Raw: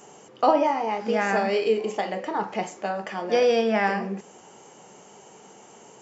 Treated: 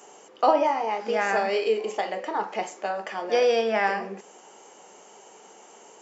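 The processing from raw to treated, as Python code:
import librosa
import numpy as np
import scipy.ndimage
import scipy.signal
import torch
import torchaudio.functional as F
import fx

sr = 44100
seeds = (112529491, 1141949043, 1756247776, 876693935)

y = scipy.signal.sosfilt(scipy.signal.butter(2, 340.0, 'highpass', fs=sr, output='sos'), x)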